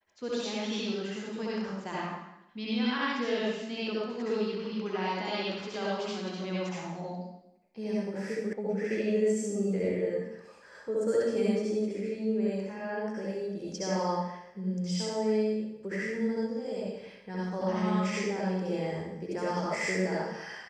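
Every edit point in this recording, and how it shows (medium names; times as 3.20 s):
8.53 s: sound stops dead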